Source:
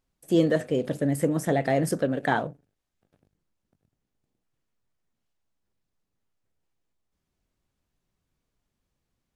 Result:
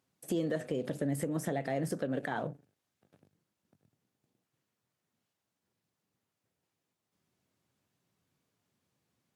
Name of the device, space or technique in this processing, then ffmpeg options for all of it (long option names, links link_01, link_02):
podcast mastering chain: -af "highpass=frequency=100:width=0.5412,highpass=frequency=100:width=1.3066,deesser=0.65,acompressor=threshold=-30dB:ratio=4,alimiter=level_in=0.5dB:limit=-24dB:level=0:latency=1:release=174,volume=-0.5dB,volume=2.5dB" -ar 48000 -c:a libmp3lame -b:a 96k